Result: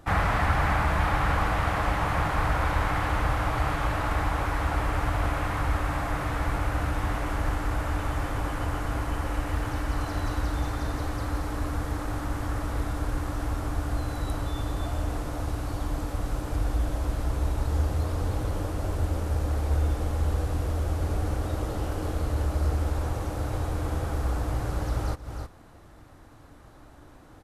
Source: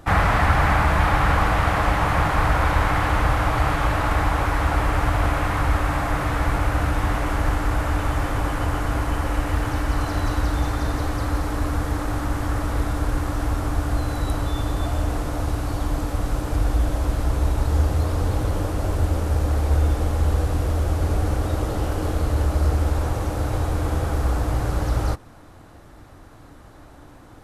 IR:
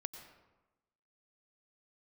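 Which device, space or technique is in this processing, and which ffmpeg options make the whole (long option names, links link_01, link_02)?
ducked delay: -filter_complex "[0:a]asplit=3[link_01][link_02][link_03];[link_02]adelay=313,volume=-7dB[link_04];[link_03]apad=whole_len=1223716[link_05];[link_04][link_05]sidechaincompress=threshold=-35dB:ratio=8:attack=5.3:release=155[link_06];[link_01][link_06]amix=inputs=2:normalize=0,volume=-6dB"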